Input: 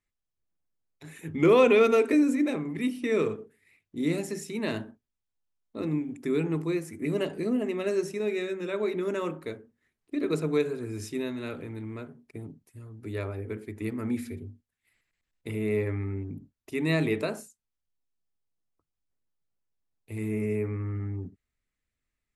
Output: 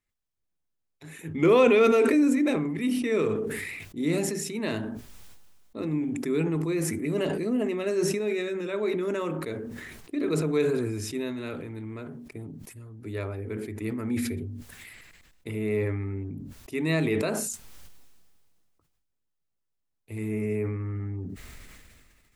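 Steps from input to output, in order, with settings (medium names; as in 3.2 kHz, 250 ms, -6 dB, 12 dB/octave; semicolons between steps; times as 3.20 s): decay stretcher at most 28 dB/s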